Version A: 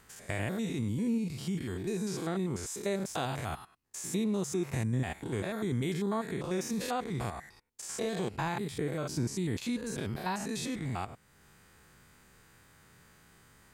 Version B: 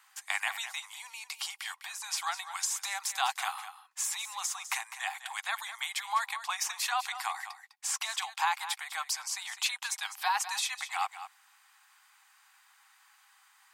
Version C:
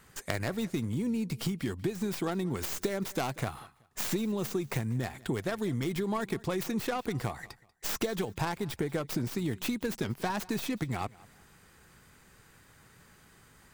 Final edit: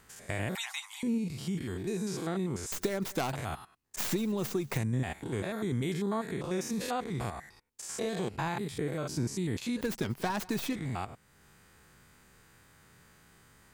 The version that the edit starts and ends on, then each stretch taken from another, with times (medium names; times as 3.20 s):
A
0.55–1.03 s: from B
2.72–3.33 s: from C
3.96–4.78 s: from C
9.81–10.73 s: from C